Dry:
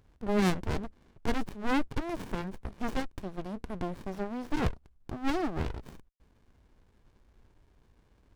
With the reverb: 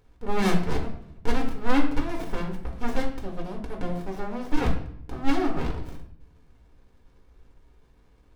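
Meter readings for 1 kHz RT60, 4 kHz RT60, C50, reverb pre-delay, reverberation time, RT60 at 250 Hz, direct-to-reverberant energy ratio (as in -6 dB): 0.65 s, 0.55 s, 8.0 dB, 4 ms, 0.70 s, 1.0 s, -0.5 dB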